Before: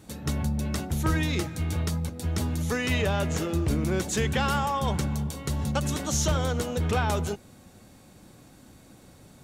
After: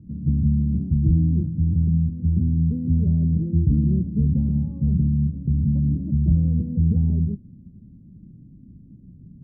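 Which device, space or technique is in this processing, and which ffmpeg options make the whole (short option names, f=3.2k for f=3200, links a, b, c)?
the neighbour's flat through the wall: -af "lowpass=f=240:w=0.5412,lowpass=f=240:w=1.3066,equalizer=f=170:t=o:w=0.52:g=4.5,volume=7.5dB"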